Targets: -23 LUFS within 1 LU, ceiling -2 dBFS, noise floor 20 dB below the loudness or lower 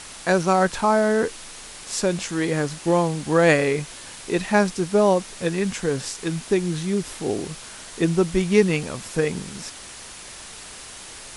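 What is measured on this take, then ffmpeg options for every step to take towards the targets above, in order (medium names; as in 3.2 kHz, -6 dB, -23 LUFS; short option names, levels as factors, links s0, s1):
noise floor -40 dBFS; noise floor target -42 dBFS; loudness -22.0 LUFS; peak level -3.5 dBFS; loudness target -23.0 LUFS
-> -af "afftdn=nr=6:nf=-40"
-af "volume=0.891"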